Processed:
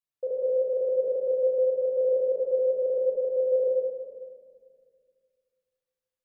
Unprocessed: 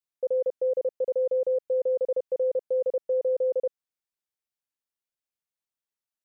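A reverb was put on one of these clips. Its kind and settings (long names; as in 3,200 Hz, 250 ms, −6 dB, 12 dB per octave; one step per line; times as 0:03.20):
rectangular room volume 3,000 cubic metres, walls mixed, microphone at 5.7 metres
level −8.5 dB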